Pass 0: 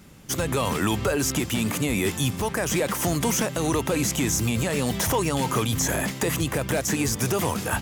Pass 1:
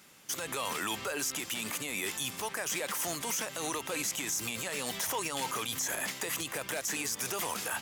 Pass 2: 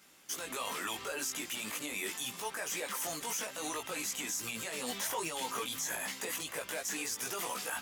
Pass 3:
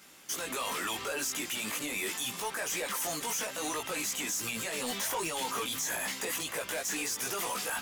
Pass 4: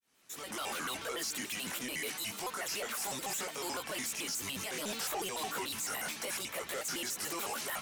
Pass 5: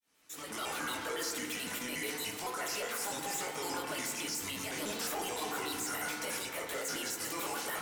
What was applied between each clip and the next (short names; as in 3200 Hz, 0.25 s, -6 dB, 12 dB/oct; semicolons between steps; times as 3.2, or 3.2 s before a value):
HPF 1200 Hz 6 dB/oct; limiter -22.5 dBFS, peak gain reduction 8.5 dB; gain -1 dB
bell 92 Hz -10.5 dB 1 oct; chorus voices 4, 0.74 Hz, delay 18 ms, depth 2.2 ms
soft clip -34 dBFS, distortion -14 dB; gain +6 dB
opening faded in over 0.64 s; shaped vibrato square 6.9 Hz, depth 250 cents; gain -3.5 dB
FDN reverb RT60 1.9 s, low-frequency decay 0.75×, high-frequency decay 0.25×, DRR 1 dB; gain -1.5 dB